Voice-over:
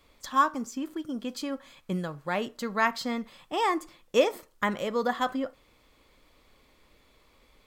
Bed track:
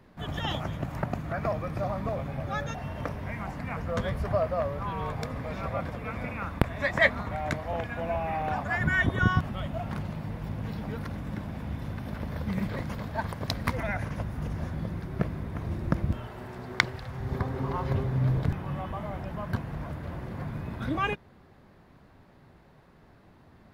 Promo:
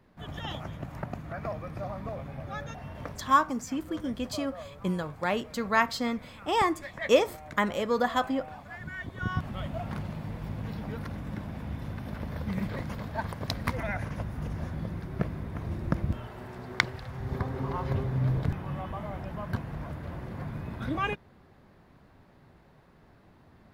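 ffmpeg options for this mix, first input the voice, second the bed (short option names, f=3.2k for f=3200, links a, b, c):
-filter_complex "[0:a]adelay=2950,volume=1dB[a];[1:a]volume=7dB,afade=t=out:st=3.06:d=0.38:silence=0.375837,afade=t=in:st=9.14:d=0.44:silence=0.237137[b];[a][b]amix=inputs=2:normalize=0"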